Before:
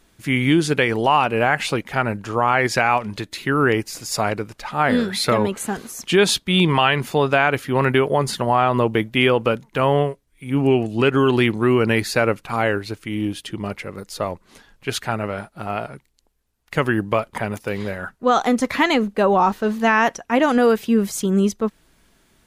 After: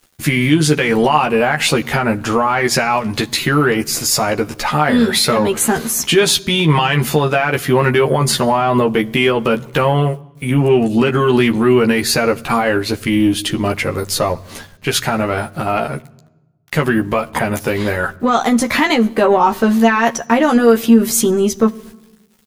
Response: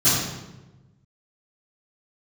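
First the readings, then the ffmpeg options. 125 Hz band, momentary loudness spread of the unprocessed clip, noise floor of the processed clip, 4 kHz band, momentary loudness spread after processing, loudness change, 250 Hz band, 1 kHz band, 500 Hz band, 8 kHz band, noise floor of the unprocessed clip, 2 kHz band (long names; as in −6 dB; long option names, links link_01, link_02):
+5.5 dB, 11 LU, −47 dBFS, +6.5 dB, 7 LU, +5.0 dB, +6.0 dB, +3.5 dB, +4.5 dB, +11.0 dB, −61 dBFS, +3.5 dB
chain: -filter_complex "[0:a]agate=range=-8dB:threshold=-49dB:ratio=16:detection=peak,highshelf=frequency=12000:gain=8.5,asplit=2[link_01][link_02];[link_02]acompressor=threshold=-29dB:ratio=6,volume=2dB[link_03];[link_01][link_03]amix=inputs=2:normalize=0,alimiter=limit=-10.5dB:level=0:latency=1:release=106,acontrast=61,aeval=exprs='val(0)*gte(abs(val(0)),0.00562)':channel_layout=same,asplit=2[link_04][link_05];[link_05]adelay=13,volume=-3dB[link_06];[link_04][link_06]amix=inputs=2:normalize=0,asplit=2[link_07][link_08];[1:a]atrim=start_sample=2205,asetrate=41895,aresample=44100[link_09];[link_08][link_09]afir=irnorm=-1:irlink=0,volume=-39.5dB[link_10];[link_07][link_10]amix=inputs=2:normalize=0,volume=-1dB"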